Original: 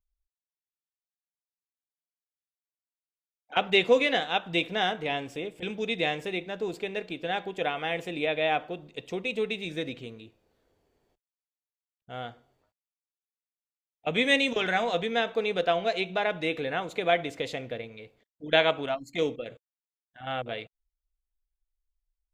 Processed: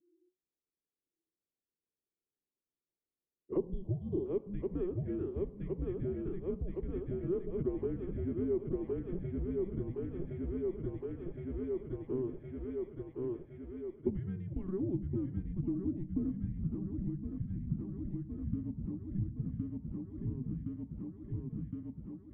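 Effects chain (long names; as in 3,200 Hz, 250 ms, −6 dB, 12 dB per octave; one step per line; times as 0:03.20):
feedback echo with a high-pass in the loop 1,065 ms, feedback 68%, high-pass 380 Hz, level −4 dB
time-frequency box erased 0:03.57–0:04.25, 1,500–3,300 Hz
frequency shifter −370 Hz
downward compressor 6 to 1, threshold −37 dBFS, peak gain reduction 20 dB
low-pass filter sweep 410 Hz → 200 Hz, 0:13.39–0:17.16
level +2.5 dB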